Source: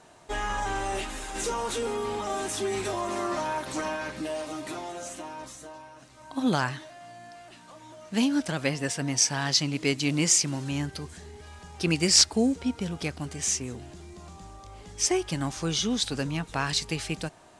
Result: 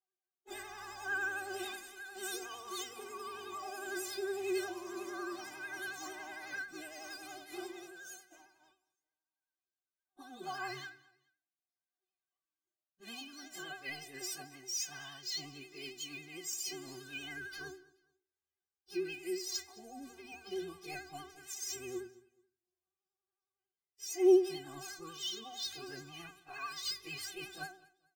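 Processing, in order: HPF 74 Hz 24 dB/oct; gate -36 dBFS, range -43 dB; high shelf 3000 Hz +2.5 dB; notches 60/120/180/240/300 Hz; reverse; compressor 10:1, threshold -32 dBFS, peak gain reduction 19.5 dB; reverse; plain phase-vocoder stretch 1.6×; metallic resonator 370 Hz, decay 0.38 s, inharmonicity 0.008; vibrato 11 Hz 62 cents; on a send: feedback echo 0.214 s, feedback 29%, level -22 dB; on the sum: decimation joined by straight lines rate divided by 2×; gain +15 dB

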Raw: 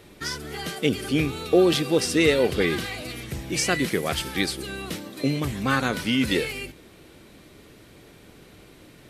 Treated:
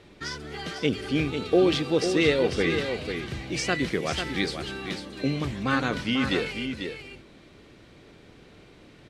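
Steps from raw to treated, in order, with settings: LPF 5500 Hz 12 dB/oct; on a send: echo 0.495 s -7.5 dB; on the sum: gain -2.5 dB

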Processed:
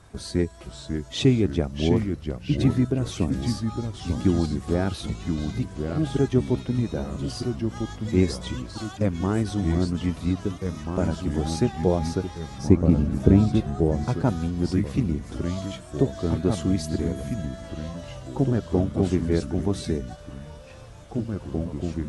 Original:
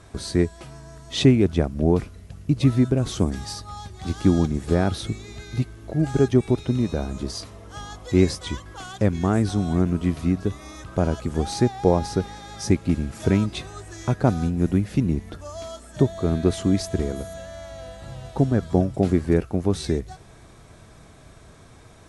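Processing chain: bin magnitudes rounded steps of 15 dB; echoes that change speed 0.504 s, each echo -2 st, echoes 3, each echo -6 dB; 12.58–14.08 tilt shelf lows +6.5 dB, about 1100 Hz; gain -3 dB

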